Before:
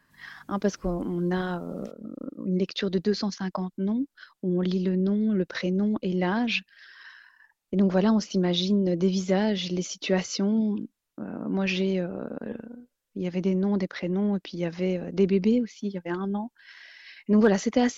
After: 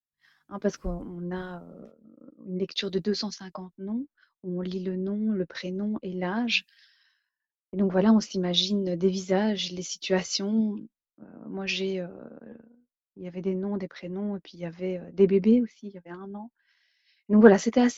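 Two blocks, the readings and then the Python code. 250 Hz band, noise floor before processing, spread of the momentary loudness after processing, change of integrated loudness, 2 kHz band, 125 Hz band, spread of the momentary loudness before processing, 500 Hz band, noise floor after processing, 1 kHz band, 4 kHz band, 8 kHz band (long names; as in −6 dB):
−1.5 dB, −78 dBFS, 19 LU, 0.0 dB, 0.0 dB, −4.5 dB, 14 LU, +0.5 dB, below −85 dBFS, −1.0 dB, +2.5 dB, can't be measured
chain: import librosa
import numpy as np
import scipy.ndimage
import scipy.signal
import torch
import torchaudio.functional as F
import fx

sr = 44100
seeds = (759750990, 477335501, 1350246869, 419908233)

y = fx.doubler(x, sr, ms=13.0, db=-10.5)
y = fx.band_widen(y, sr, depth_pct=100)
y = y * 10.0 ** (-3.5 / 20.0)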